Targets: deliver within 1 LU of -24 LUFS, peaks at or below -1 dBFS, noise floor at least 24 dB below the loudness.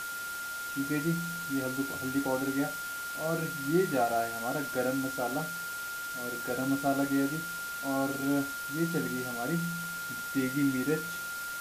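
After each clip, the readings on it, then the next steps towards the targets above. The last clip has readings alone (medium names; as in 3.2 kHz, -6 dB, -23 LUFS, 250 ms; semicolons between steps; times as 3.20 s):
steady tone 1.4 kHz; tone level -36 dBFS; noise floor -38 dBFS; noise floor target -56 dBFS; loudness -32.0 LUFS; peak level -15.5 dBFS; loudness target -24.0 LUFS
-> band-stop 1.4 kHz, Q 30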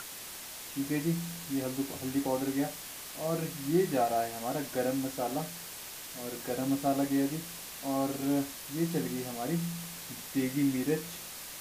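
steady tone not found; noise floor -44 dBFS; noise floor target -57 dBFS
-> noise print and reduce 13 dB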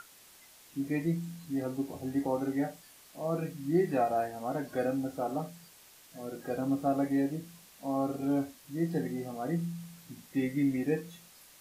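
noise floor -57 dBFS; loudness -33.0 LUFS; peak level -16.5 dBFS; loudness target -24.0 LUFS
-> trim +9 dB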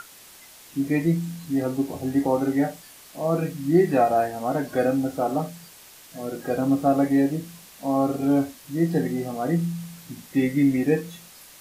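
loudness -24.0 LUFS; peak level -7.5 dBFS; noise floor -48 dBFS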